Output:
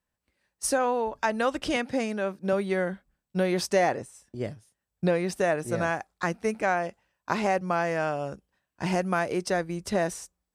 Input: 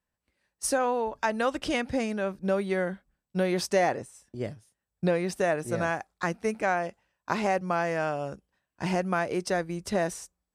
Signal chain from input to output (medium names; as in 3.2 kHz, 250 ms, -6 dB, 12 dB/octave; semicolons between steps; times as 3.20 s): 1.76–2.53 s: high-pass 170 Hz; 8.92–9.33 s: treble shelf 8.9 kHz +7.5 dB; trim +1 dB